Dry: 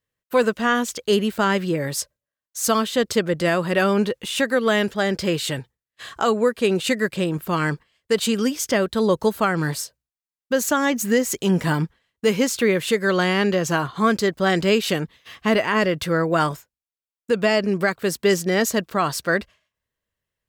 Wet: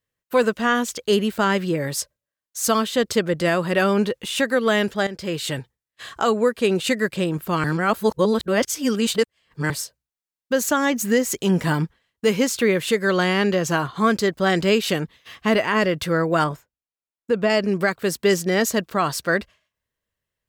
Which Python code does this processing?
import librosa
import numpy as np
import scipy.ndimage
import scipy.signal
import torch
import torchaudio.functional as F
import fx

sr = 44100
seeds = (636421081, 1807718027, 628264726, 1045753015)

y = fx.high_shelf(x, sr, hz=2600.0, db=-10.0, at=(16.44, 17.5))
y = fx.edit(y, sr, fx.fade_in_from(start_s=5.07, length_s=0.48, floor_db=-13.0),
    fx.reverse_span(start_s=7.64, length_s=2.06), tone=tone)